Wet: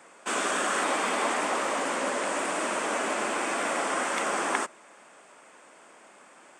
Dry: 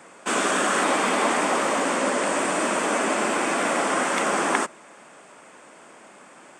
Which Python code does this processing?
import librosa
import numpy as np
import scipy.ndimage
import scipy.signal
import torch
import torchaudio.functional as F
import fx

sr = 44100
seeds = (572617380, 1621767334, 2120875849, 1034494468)

y = fx.low_shelf(x, sr, hz=190.0, db=-11.5)
y = fx.doppler_dist(y, sr, depth_ms=0.1, at=(1.34, 3.37))
y = F.gain(torch.from_numpy(y), -4.5).numpy()